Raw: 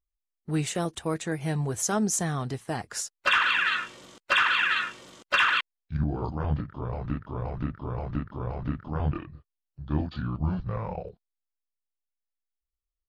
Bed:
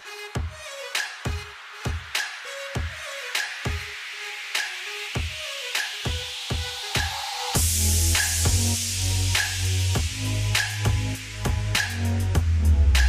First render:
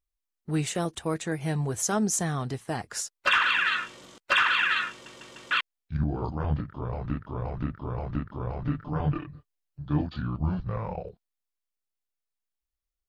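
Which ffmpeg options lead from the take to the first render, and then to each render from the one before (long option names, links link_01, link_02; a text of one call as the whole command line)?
ffmpeg -i in.wav -filter_complex "[0:a]asettb=1/sr,asplit=3[link_01][link_02][link_03];[link_01]atrim=end=8.644[link_04];[link_02]atrim=start=8.64:end=10.03,asetpts=PTS-STARTPTS,afade=type=in:duration=0.004:curve=qsin,afade=type=out:start_time=1.386:duration=0.004:curve=qsin,aecho=1:1:6.8:0.58,atrim=end_sample=61299[link_05];[link_03]atrim=start=10.026[link_06];[link_04][link_05]acrossfade=duration=0.004:curve1=hsin:curve2=qsin[link_07];[link_07][link_06]acrossfade=duration=0.004:curve1=qsin:curve2=hsin,asplit=5[link_08][link_09][link_10][link_11][link_12];[link_08]atrim=end=5.062[link_13];[link_09]atrim=start=4.908:end=5.062[link_14];[link_10]atrim=start=4.908:end=5.062[link_15];[link_11]atrim=start=4.908:end=5.062[link_16];[link_12]atrim=start=5.508[link_17];[link_13][link_14]acrossfade=duration=0.004:curve1=hsin:curve2=hsin[link_18];[link_18][link_15]acrossfade=duration=0.004:curve1=hsin:curve2=hsin[link_19];[link_19][link_16]acrossfade=duration=0.004:curve1=hsin:curve2=hsin[link_20];[link_20][link_17]acrossfade=duration=0.004:curve1=hsin:curve2=hsin" out.wav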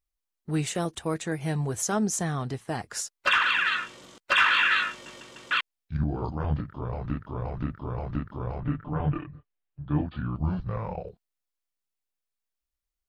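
ffmpeg -i in.wav -filter_complex "[0:a]asettb=1/sr,asplit=3[link_01][link_02][link_03];[link_01]atrim=end=1.844[link_04];[link_02]atrim=start=1.84:end=2.74,asetpts=PTS-STARTPTS,afade=type=in:duration=0.004:curve=qsin,afade=type=out:start_time=0.896:duration=0.004:curve=qsin,highshelf=frequency=5700:gain=-4[link_05];[link_03]atrim=start=2.736[link_06];[link_04][link_05]acrossfade=duration=0.004:curve1=hsin:curve2=qsin[link_07];[link_07][link_06]acrossfade=duration=0.004:curve1=qsin:curve2=hsin,asettb=1/sr,asplit=3[link_08][link_09][link_10];[link_08]atrim=end=4.364[link_11];[link_09]atrim=start=4.36:end=5.21,asetpts=PTS-STARTPTS,afade=type=in:duration=0.004:curve=qsin,afade=type=out:start_time=0.846:duration=0.004:curve=qsin,asplit=2[link_12][link_13];[link_13]adelay=20,volume=-2dB[link_14];[link_12][link_14]amix=inputs=2:normalize=0,atrim=end_sample=37485[link_15];[link_10]atrim=start=5.206[link_16];[link_11][link_15]acrossfade=duration=0.004:curve1=hsin:curve2=qsin[link_17];[link_17][link_16]acrossfade=duration=0.004:curve1=qsin:curve2=hsin,asettb=1/sr,asplit=3[link_18][link_19][link_20];[link_18]atrim=end=8.604[link_21];[link_19]atrim=start=8.6:end=10.36,asetpts=PTS-STARTPTS,afade=type=in:duration=0.004:curve=qsin,afade=type=out:start_time=1.756:duration=0.004:curve=qsin,lowpass=frequency=3100:width=0.5412,lowpass=frequency=3100:width=1.3066[link_22];[link_20]atrim=start=10.356[link_23];[link_21][link_22]acrossfade=duration=0.004:curve1=hsin:curve2=qsin[link_24];[link_24][link_23]acrossfade=duration=0.004:curve1=qsin:curve2=hsin" out.wav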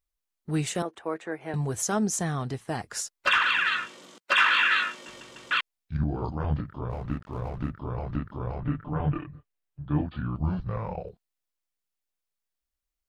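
ffmpeg -i in.wav -filter_complex "[0:a]asettb=1/sr,asplit=3[link_01][link_02][link_03];[link_01]atrim=end=0.824[link_04];[link_02]atrim=start=0.82:end=1.54,asetpts=PTS-STARTPTS,afade=type=in:duration=0.004:curve=qsin,afade=type=out:start_time=0.716:duration=0.004:curve=qsin,acrossover=split=280 2400:gain=0.0708 1 0.126[link_05][link_06][link_07];[link_05][link_06][link_07]amix=inputs=3:normalize=0[link_08];[link_03]atrim=start=1.536[link_09];[link_04][link_08]acrossfade=duration=0.004:curve1=hsin:curve2=qsin[link_10];[link_10][link_09]acrossfade=duration=0.004:curve1=qsin:curve2=hsin,asettb=1/sr,asplit=3[link_11][link_12][link_13];[link_11]atrim=end=3.864[link_14];[link_12]atrim=start=3.86:end=5.09,asetpts=PTS-STARTPTS,afade=type=in:duration=0.004:curve=qsin,afade=type=out:start_time=1.226:duration=0.004:curve=qsin,highpass=frequency=170:width=0.5412,highpass=frequency=170:width=1.3066[link_15];[link_13]atrim=start=5.086[link_16];[link_14][link_15]acrossfade=duration=0.004:curve1=hsin:curve2=qsin[link_17];[link_17][link_16]acrossfade=duration=0.004:curve1=qsin:curve2=hsin,asettb=1/sr,asplit=3[link_18][link_19][link_20];[link_18]atrim=end=6.904[link_21];[link_19]atrim=start=6.9:end=7.7,asetpts=PTS-STARTPTS,afade=type=in:duration=0.004:curve=qsin,afade=type=out:start_time=0.796:duration=0.004:curve=qsin,aeval=exprs='sgn(val(0))*max(abs(val(0))-0.00282,0)':channel_layout=same[link_22];[link_20]atrim=start=7.696[link_23];[link_21][link_22]acrossfade=duration=0.004:curve1=hsin:curve2=qsin[link_24];[link_24][link_23]acrossfade=duration=0.004:curve1=qsin:curve2=hsin" out.wav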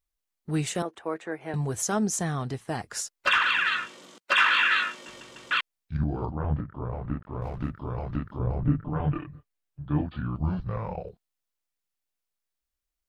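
ffmpeg -i in.wav -filter_complex "[0:a]asettb=1/sr,asplit=3[link_01][link_02][link_03];[link_01]atrim=end=6.254[link_04];[link_02]atrim=start=6.25:end=7.42,asetpts=PTS-STARTPTS,afade=type=in:duration=0.004:curve=qsin,afade=type=out:start_time=1.166:duration=0.004:curve=qsin,lowpass=1800[link_05];[link_03]atrim=start=7.416[link_06];[link_04][link_05]acrossfade=duration=0.004:curve1=hsin:curve2=qsin[link_07];[link_07][link_06]acrossfade=duration=0.004:curve1=qsin:curve2=hsin,asettb=1/sr,asplit=3[link_08][link_09][link_10];[link_08]atrim=end=8.394[link_11];[link_09]atrim=start=8.39:end=8.9,asetpts=PTS-STARTPTS,afade=type=in:duration=0.004:curve=qsin,afade=type=out:start_time=0.506:duration=0.004:curve=qsin,tiltshelf=frequency=740:gain=6[link_12];[link_10]atrim=start=8.896[link_13];[link_11][link_12]acrossfade=duration=0.004:curve1=hsin:curve2=qsin[link_14];[link_14][link_13]acrossfade=duration=0.004:curve1=qsin:curve2=hsin" out.wav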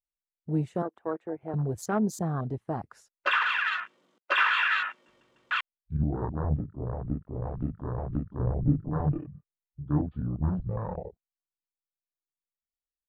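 ffmpeg -i in.wav -af "afwtdn=0.02,equalizer=frequency=7700:width=0.44:gain=-11.5" out.wav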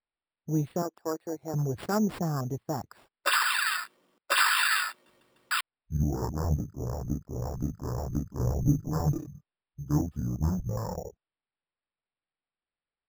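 ffmpeg -i in.wav -af "acrusher=samples=7:mix=1:aa=0.000001" out.wav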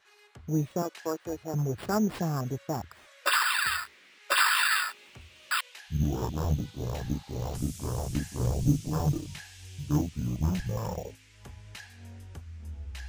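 ffmpeg -i in.wav -i bed.wav -filter_complex "[1:a]volume=-22dB[link_01];[0:a][link_01]amix=inputs=2:normalize=0" out.wav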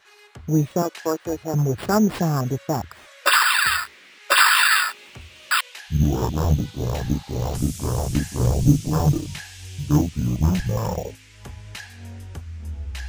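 ffmpeg -i in.wav -af "volume=8.5dB" out.wav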